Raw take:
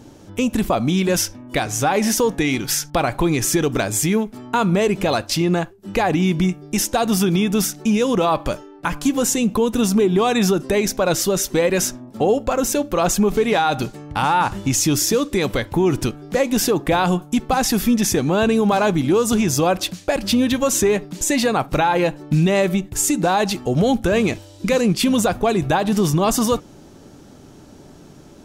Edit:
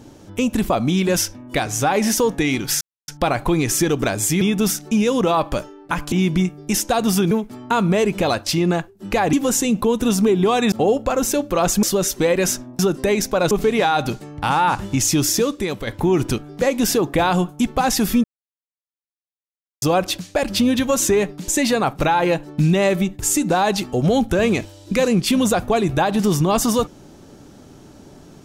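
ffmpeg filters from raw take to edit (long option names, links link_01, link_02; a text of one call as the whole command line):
ffmpeg -i in.wav -filter_complex "[0:a]asplit=13[link_01][link_02][link_03][link_04][link_05][link_06][link_07][link_08][link_09][link_10][link_11][link_12][link_13];[link_01]atrim=end=2.81,asetpts=PTS-STARTPTS,afade=type=out:start_time=2.806:duration=0.004:curve=hsin,apad=pad_dur=0.27[link_14];[link_02]atrim=start=2.81:end=4.142,asetpts=PTS-STARTPTS,afade=type=in:duration=0.004:curve=hsin[link_15];[link_03]atrim=start=7.348:end=9.062[link_16];[link_04]atrim=start=6.158:end=7.352[link_17];[link_05]atrim=start=4.138:end=6.162[link_18];[link_06]atrim=start=9.058:end=10.452[link_19];[link_07]atrim=start=12.128:end=13.242[link_20];[link_08]atrim=start=11.168:end=12.132[link_21];[link_09]atrim=start=10.448:end=11.172[link_22];[link_10]atrim=start=13.238:end=15.6,asetpts=PTS-STARTPTS,afade=type=out:start_time=1.862:duration=0.5:silence=0.375837[link_23];[link_11]atrim=start=15.6:end=17.97,asetpts=PTS-STARTPTS,afade=type=in:duration=0.004:curve=hsin:silence=0.375837,afade=type=out:start_time=2.366:duration=0.004:curve=hsin[link_24];[link_12]atrim=start=17.97:end=19.55,asetpts=PTS-STARTPTS,volume=0[link_25];[link_13]atrim=start=19.55,asetpts=PTS-STARTPTS,afade=type=in:duration=0.004:curve=hsin[link_26];[link_14][link_15]concat=n=2:v=0:a=1[link_27];[link_27][link_16]acrossfade=duration=0.004:curve1=hsin:curve2=hsin[link_28];[link_28][link_17]acrossfade=duration=0.004:curve1=hsin:curve2=hsin[link_29];[link_29][link_18]acrossfade=duration=0.004:curve1=hsin:curve2=hsin[link_30];[link_30][link_19]acrossfade=duration=0.004:curve1=hsin:curve2=hsin[link_31];[link_31][link_20]acrossfade=duration=0.004:curve1=hsin:curve2=hsin[link_32];[link_32][link_21]acrossfade=duration=0.004:curve1=hsin:curve2=hsin[link_33];[link_33][link_22]acrossfade=duration=0.004:curve1=hsin:curve2=hsin[link_34];[link_23][link_24][link_25][link_26]concat=n=4:v=0:a=1[link_35];[link_34][link_35]acrossfade=duration=0.004:curve1=hsin:curve2=hsin" out.wav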